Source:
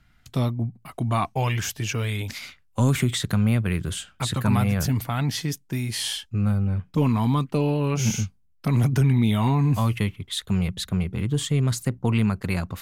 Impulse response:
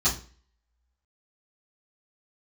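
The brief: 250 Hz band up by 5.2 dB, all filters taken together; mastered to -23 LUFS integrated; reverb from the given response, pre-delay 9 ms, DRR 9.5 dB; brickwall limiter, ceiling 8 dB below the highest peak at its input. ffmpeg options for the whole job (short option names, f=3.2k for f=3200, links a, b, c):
-filter_complex "[0:a]equalizer=f=250:t=o:g=6.5,alimiter=limit=-14dB:level=0:latency=1,asplit=2[a][b];[1:a]atrim=start_sample=2205,adelay=9[c];[b][c]afir=irnorm=-1:irlink=0,volume=-21dB[d];[a][d]amix=inputs=2:normalize=0,volume=0.5dB"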